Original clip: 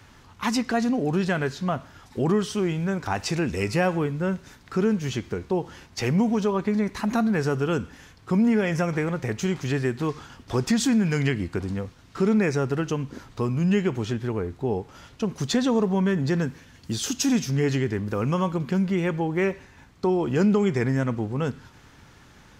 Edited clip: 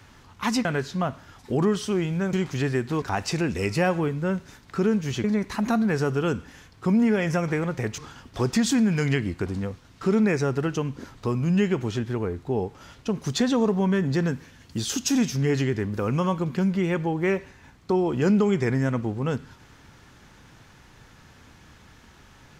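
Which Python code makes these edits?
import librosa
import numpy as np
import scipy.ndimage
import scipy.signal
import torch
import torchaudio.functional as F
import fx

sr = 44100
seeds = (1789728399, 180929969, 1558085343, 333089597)

y = fx.edit(x, sr, fx.cut(start_s=0.65, length_s=0.67),
    fx.cut(start_s=5.22, length_s=1.47),
    fx.move(start_s=9.43, length_s=0.69, to_s=3.0), tone=tone)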